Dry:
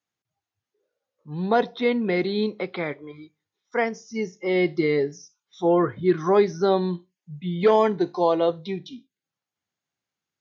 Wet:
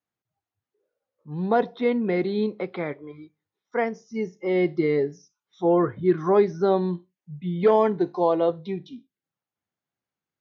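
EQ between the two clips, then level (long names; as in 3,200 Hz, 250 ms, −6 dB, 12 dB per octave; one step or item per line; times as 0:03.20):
high-shelf EQ 2,700 Hz −12 dB
0.0 dB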